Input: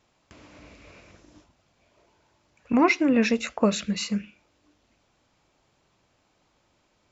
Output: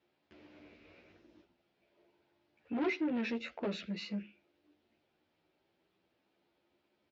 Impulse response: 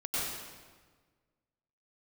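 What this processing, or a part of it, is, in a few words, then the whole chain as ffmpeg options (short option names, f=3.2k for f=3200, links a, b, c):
barber-pole flanger into a guitar amplifier: -filter_complex "[0:a]asplit=2[a][b];[b]adelay=11.4,afreqshift=0.44[c];[a][c]amix=inputs=2:normalize=1,asoftclip=type=tanh:threshold=-25dB,highpass=98,equalizer=f=120:t=q:w=4:g=-9,equalizer=f=360:t=q:w=4:g=8,equalizer=f=1.1k:t=q:w=4:g=-7,lowpass=f=4.3k:w=0.5412,lowpass=f=4.3k:w=1.3066,volume=-6.5dB"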